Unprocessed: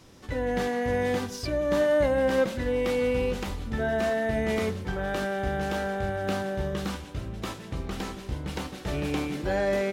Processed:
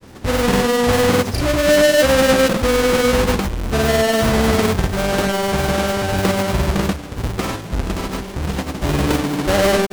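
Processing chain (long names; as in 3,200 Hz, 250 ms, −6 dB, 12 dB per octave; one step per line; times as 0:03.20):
each half-wave held at its own peak
granular cloud, pitch spread up and down by 0 semitones
level +8 dB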